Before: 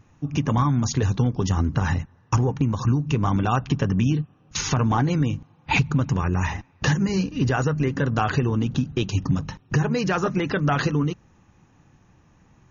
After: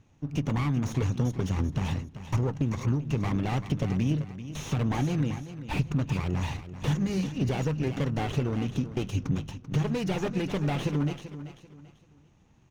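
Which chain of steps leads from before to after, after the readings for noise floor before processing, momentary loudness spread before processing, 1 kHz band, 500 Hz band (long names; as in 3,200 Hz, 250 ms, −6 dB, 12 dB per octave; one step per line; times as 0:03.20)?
−58 dBFS, 5 LU, −10.5 dB, −6.0 dB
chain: lower of the sound and its delayed copy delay 0.31 ms
repeating echo 388 ms, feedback 32%, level −13 dB
slew-rate limiting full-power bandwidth 81 Hz
level −5.5 dB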